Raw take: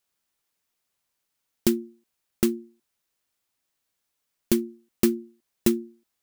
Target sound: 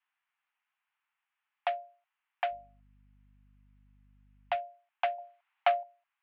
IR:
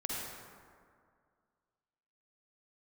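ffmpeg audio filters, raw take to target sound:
-filter_complex "[0:a]asettb=1/sr,asplit=3[a][b][c];[a]atrim=end=5.184[d];[b]atrim=start=5.18:end=5.83,asetpts=PTS-STARTPTS,afade=t=in:d=0.004:c=qsin,afade=t=out:st=0.646:d=0.004:c=qsin,acontrast=60[e];[c]atrim=start=5.826[f];[d][e]acrossfade=d=0.004:c1=hsin:c2=qsin[g];[g][f]acrossfade=d=0.004:c1=qsin:c2=hsin,highpass=f=450:t=q:w=0.5412,highpass=f=450:t=q:w=1.307,lowpass=f=2.5k:t=q:w=0.5176,lowpass=f=2.5k:t=q:w=0.7071,lowpass=f=2.5k:t=q:w=1.932,afreqshift=350,asettb=1/sr,asplit=3[h][i][j];[h]atrim=end=2.514[k];[i]atrim=start=2.51:end=4.56,asetpts=PTS-STARTPTS,afade=t=in:d=0.004:c=qsin,afade=t=out:st=2.046:d=0.004:c=qsin,aeval=exprs='val(0)+0.000631*(sin(2*PI*50*n/s)+sin(2*PI*2*50*n/s)/2+sin(2*PI*3*50*n/s)/3+sin(2*PI*4*50*n/s)/4+sin(2*PI*5*50*n/s)/5)':c=same[l];[j]atrim=start=4.556[m];[k][l]acrossfade=d=0.004:c1=hsin:c2=qsin[n];[n][m]acrossfade=d=0.004:c1=qsin:c2=hsin,volume=2dB"

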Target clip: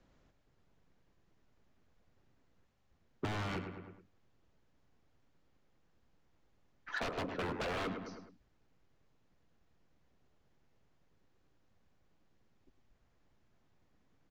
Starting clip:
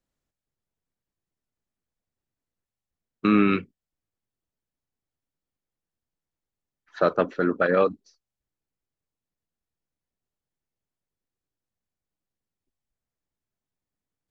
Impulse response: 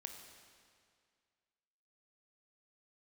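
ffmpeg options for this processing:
-filter_complex "[0:a]aresample=16000,aeval=exprs='0.0708*(abs(mod(val(0)/0.0708+3,4)-2)-1)':c=same,aresample=44100,alimiter=level_in=6.5dB:limit=-24dB:level=0:latency=1:release=495,volume=-6.5dB,aemphasis=mode=reproduction:type=75fm,asplit=2[a][b];[b]adelay=105,lowpass=f=2.8k:p=1,volume=-11dB,asplit=2[c][d];[d]adelay=105,lowpass=f=2.8k:p=1,volume=0.35,asplit=2[e][f];[f]adelay=105,lowpass=f=2.8k:p=1,volume=0.35,asplit=2[g][h];[h]adelay=105,lowpass=f=2.8k:p=1,volume=0.35[i];[a][c][e][g][i]amix=inputs=5:normalize=0,acrossover=split=190[j][k];[k]asoftclip=type=hard:threshold=-36dB[l];[j][l]amix=inputs=2:normalize=0,acompressor=threshold=-53dB:ratio=6,volume=16dB"

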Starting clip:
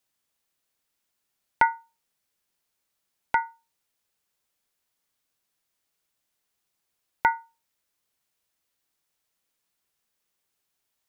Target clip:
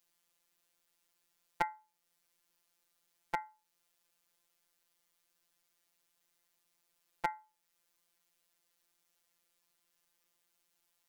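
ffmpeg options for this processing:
-af "equalizer=f=170:t=o:w=0.54:g=-3.5,acompressor=threshold=-47dB:ratio=1.5,afftfilt=real='hypot(re,im)*cos(PI*b)':imag='0':win_size=1024:overlap=0.75,volume=4.5dB"

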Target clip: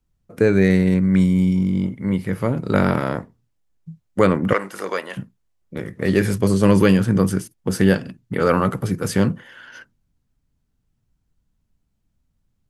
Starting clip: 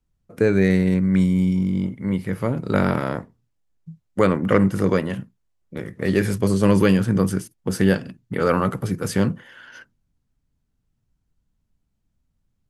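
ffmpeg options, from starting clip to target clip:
-filter_complex "[0:a]asettb=1/sr,asplit=3[a][b][c];[a]atrim=end=4.534[d];[b]atrim=start=4.53:end=5.17,asetpts=PTS-STARTPTS,afade=t=in:d=0.004:c=qsin,afade=t=out:st=0.636:d=0.004:c=qsin,highpass=670[e];[c]atrim=start=5.166[f];[d][e]acrossfade=d=0.004:c1=hsin:c2=qsin[g];[g][f]acrossfade=d=0.004:c1=qsin:c2=hsin,volume=2dB"

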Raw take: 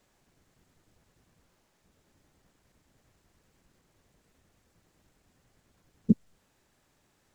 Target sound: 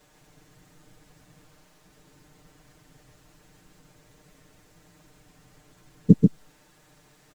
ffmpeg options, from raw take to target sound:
-af "aecho=1:1:6.6:0.91,aecho=1:1:138:0.668,volume=7.5dB"

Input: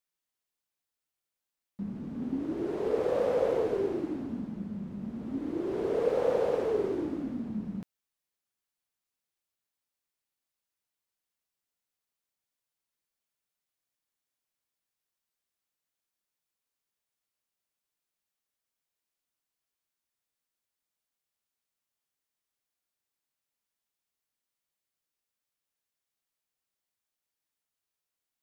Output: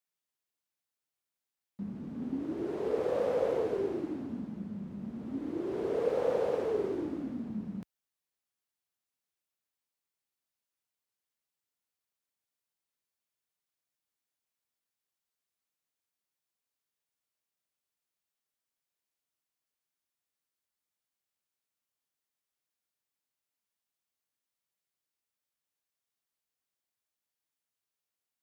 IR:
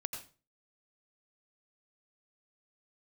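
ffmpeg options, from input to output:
-af "highpass=53,volume=-2.5dB"

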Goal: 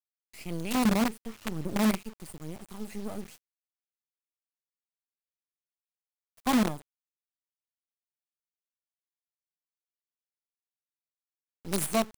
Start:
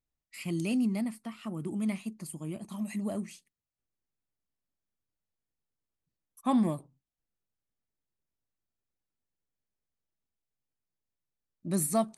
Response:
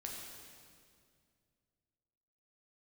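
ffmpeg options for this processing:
-filter_complex "[0:a]asettb=1/sr,asplit=3[a][b][c];[a]atrim=end=0.854[d];[b]atrim=start=0.85:end=2.02,asetpts=PTS-STARTPTS,afade=t=in:d=0.004:c=qsin,afade=t=out:st=1.166:d=0.004:c=qsin,lowshelf=f=210:g=10.5[e];[c]atrim=start=2.016[f];[d][e]acrossfade=d=0.004:c1=hsin:c2=qsin[g];[g][f]acrossfade=d=0.004:c1=qsin:c2=hsin,acrusher=bits=5:dc=4:mix=0:aa=0.000001"

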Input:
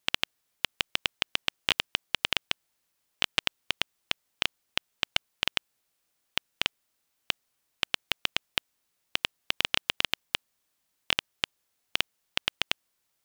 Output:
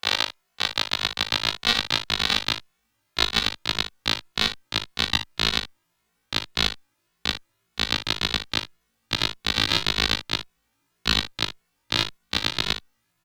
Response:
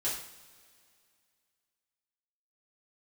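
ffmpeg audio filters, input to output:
-filter_complex "[0:a]afftfilt=real='re':imag='-im':win_size=2048:overlap=0.75,asetrate=57191,aresample=44100,atempo=0.771105,aecho=1:1:39|59:0.158|0.251,asubboost=boost=6.5:cutoff=230,acontrast=50,equalizer=f=1k:w=0.31:g=12,asplit=2[a][b];[b]adelay=2.3,afreqshift=1.8[c];[a][c]amix=inputs=2:normalize=1,volume=2dB"

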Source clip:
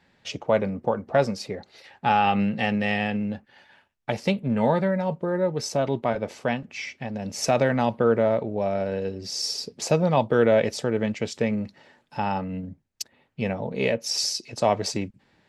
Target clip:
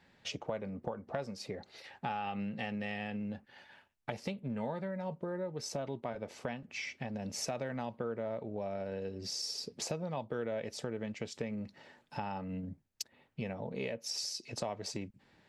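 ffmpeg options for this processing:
-af "acompressor=threshold=-34dB:ratio=4,volume=-3dB"

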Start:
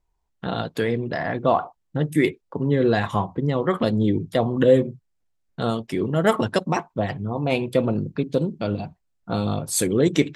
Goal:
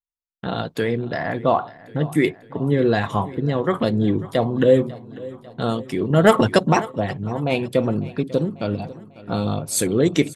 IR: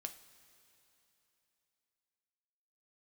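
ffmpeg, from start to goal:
-filter_complex "[0:a]aecho=1:1:546|1092|1638|2184|2730:0.112|0.0662|0.0391|0.023|0.0136,agate=range=-33dB:threshold=-42dB:ratio=3:detection=peak,asettb=1/sr,asplit=3[a][b][c];[a]atrim=end=6.104[d];[b]atrim=start=6.1:end=6.92,asetpts=PTS-STARTPTS,afade=t=in:d=0.004:c=qsin,afade=t=out:st=0.816:d=0.004:c=qsin,acontrast=30[e];[c]atrim=start=6.916[f];[d][e]acrossfade=d=0.004:c1=hsin:c2=qsin[g];[g][f]acrossfade=d=0.004:c1=qsin:c2=hsin,volume=1dB"

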